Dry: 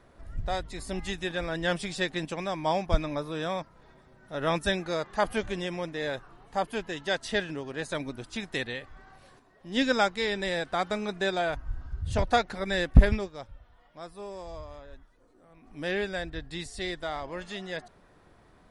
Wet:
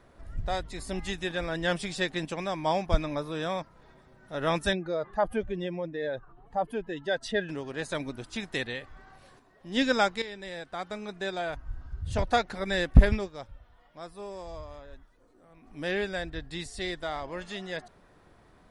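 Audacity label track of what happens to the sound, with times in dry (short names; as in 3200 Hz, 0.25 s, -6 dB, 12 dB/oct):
4.730000	7.490000	spectral contrast raised exponent 1.6
10.220000	12.740000	fade in, from -12 dB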